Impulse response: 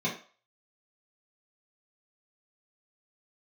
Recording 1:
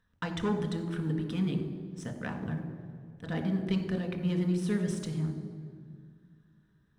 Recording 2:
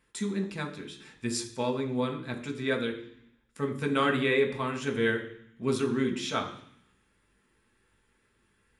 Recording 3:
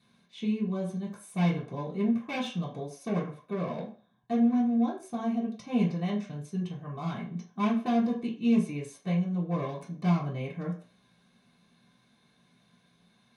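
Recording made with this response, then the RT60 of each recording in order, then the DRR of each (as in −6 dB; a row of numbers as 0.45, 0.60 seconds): 3; 2.1, 0.60, 0.40 seconds; 3.0, 1.0, −7.5 decibels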